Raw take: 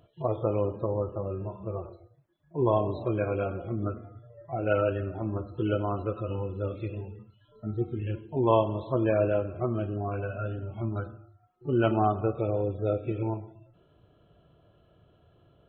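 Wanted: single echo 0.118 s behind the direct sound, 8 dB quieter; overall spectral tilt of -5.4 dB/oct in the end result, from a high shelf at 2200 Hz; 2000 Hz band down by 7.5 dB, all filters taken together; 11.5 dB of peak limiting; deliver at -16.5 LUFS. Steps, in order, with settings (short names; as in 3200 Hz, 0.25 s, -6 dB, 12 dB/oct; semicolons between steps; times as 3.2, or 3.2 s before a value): bell 2000 Hz -8.5 dB; high shelf 2200 Hz -7 dB; limiter -22 dBFS; echo 0.118 s -8 dB; gain +16 dB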